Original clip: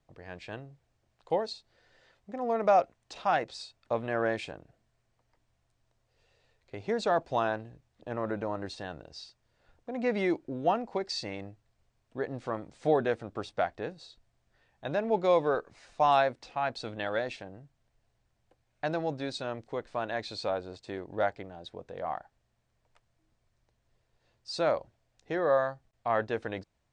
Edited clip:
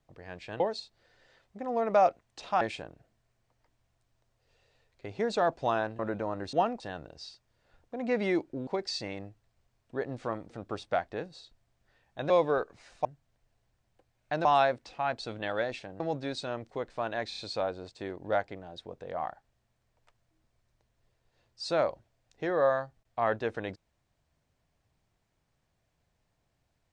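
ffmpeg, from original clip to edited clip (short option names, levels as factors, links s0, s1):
-filter_complex "[0:a]asplit=15[s0][s1][s2][s3][s4][s5][s6][s7][s8][s9][s10][s11][s12][s13][s14];[s0]atrim=end=0.602[s15];[s1]atrim=start=1.328:end=3.342[s16];[s2]atrim=start=4.298:end=7.682[s17];[s3]atrim=start=8.208:end=8.752[s18];[s4]atrim=start=10.618:end=10.892[s19];[s5]atrim=start=8.748:end=10.622[s20];[s6]atrim=start=10.888:end=12.722[s21];[s7]atrim=start=13.158:end=14.962[s22];[s8]atrim=start=15.268:end=16.022[s23];[s9]atrim=start=17.568:end=18.972[s24];[s10]atrim=start=16.018:end=17.572[s25];[s11]atrim=start=18.968:end=20.292[s26];[s12]atrim=start=20.258:end=20.292[s27];[s13]atrim=start=20.258:end=20.292[s28];[s14]atrim=start=20.258[s29];[s15][s16]acrossfade=d=0.004:c1=hsin:c2=hsin[s30];[s30][s17]acrossfade=d=0.004:c1=hsin:c2=hsin[s31];[s31][s18]acrossfade=d=0.004:c1=hsin:c2=hsin[s32];[s32][s19]acrossfade=d=0.004:c1=hsin:c2=hsin[s33];[s33][s20]acrossfade=d=0.004:c1=hsin:c2=hsin[s34];[s34][s21]acrossfade=d=0.004:c1=hsin:c2=hsin[s35];[s35][s22]acrossfade=d=0.004:c1=hsin:c2=hsin[s36];[s36][s23]acrossfade=d=0.004:c1=hsin:c2=hsin[s37];[s37][s24]acrossfade=d=0.004:c1=hsin:c2=hsin[s38];[s38][s25]acrossfade=d=0.004:c1=hsin:c2=hsin[s39];[s39][s26]acrossfade=d=0.004:c1=hsin:c2=hsin[s40];[s40][s27]acrossfade=d=0.004:c1=hsin:c2=hsin[s41];[s41][s28]acrossfade=d=0.004:c1=hsin:c2=hsin[s42];[s42][s29]acrossfade=d=0.004:c1=hsin:c2=hsin"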